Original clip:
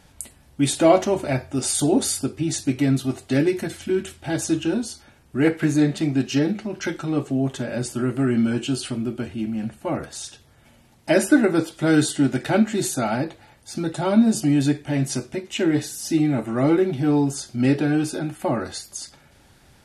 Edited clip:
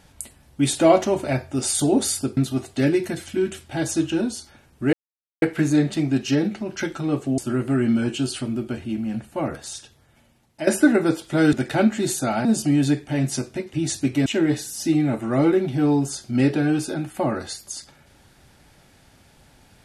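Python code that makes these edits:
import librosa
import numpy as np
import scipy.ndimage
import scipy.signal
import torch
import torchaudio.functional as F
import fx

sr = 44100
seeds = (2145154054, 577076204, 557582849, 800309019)

y = fx.edit(x, sr, fx.move(start_s=2.37, length_s=0.53, to_s=15.51),
    fx.insert_silence(at_s=5.46, length_s=0.49),
    fx.cut(start_s=7.42, length_s=0.45),
    fx.fade_out_to(start_s=10.1, length_s=1.06, floor_db=-11.0),
    fx.cut(start_s=12.02, length_s=0.26),
    fx.cut(start_s=13.2, length_s=1.03), tone=tone)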